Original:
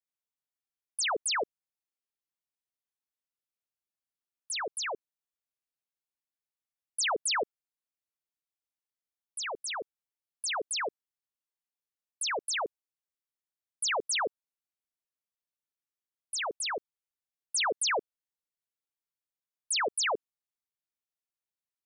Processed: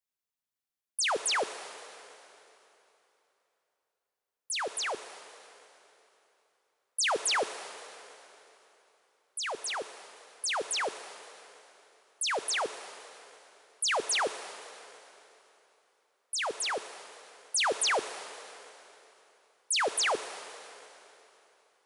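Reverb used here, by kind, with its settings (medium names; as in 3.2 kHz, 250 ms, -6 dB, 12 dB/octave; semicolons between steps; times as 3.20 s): plate-style reverb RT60 3.3 s, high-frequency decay 0.9×, DRR 10.5 dB; trim +1 dB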